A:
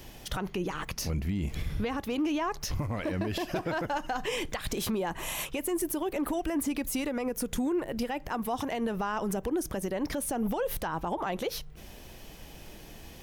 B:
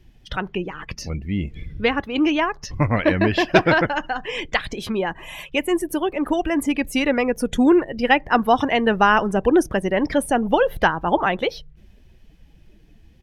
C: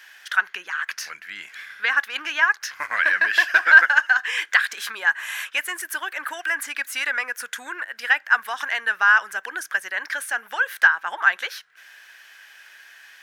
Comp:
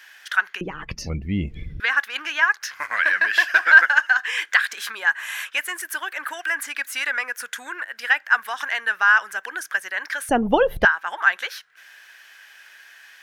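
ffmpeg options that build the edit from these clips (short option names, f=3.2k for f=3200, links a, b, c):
-filter_complex "[1:a]asplit=2[a][b];[2:a]asplit=3[c][d][e];[c]atrim=end=0.612[f];[a]atrim=start=0.608:end=1.802[g];[d]atrim=start=1.798:end=10.292[h];[b]atrim=start=10.288:end=10.852[i];[e]atrim=start=10.848[j];[f][g]acrossfade=d=0.004:c1=hsin:c2=hsin[k];[k][h]acrossfade=d=0.004:c1=hsin:c2=hsin[l];[l][i]acrossfade=d=0.004:c1=hsin:c2=hsin[m];[m][j]acrossfade=d=0.004:c1=hsin:c2=hsin"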